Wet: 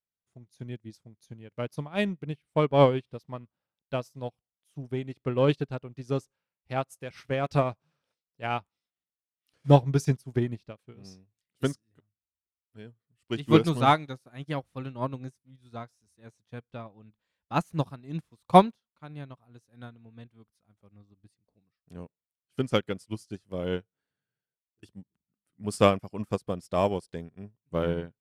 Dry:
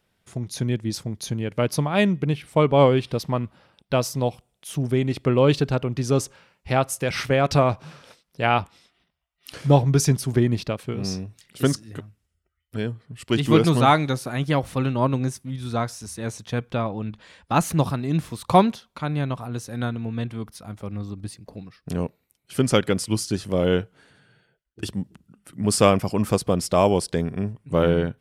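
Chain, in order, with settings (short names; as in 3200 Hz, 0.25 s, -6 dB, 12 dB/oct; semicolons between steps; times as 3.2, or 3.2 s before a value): in parallel at -10.5 dB: soft clip -20 dBFS, distortion -8 dB; on the sum: upward expander 2.5:1, over -33 dBFS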